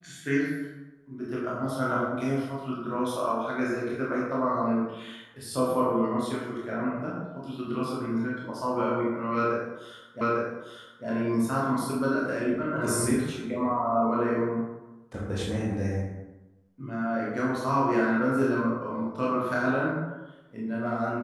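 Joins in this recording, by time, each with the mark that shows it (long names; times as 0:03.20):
0:10.21: the same again, the last 0.85 s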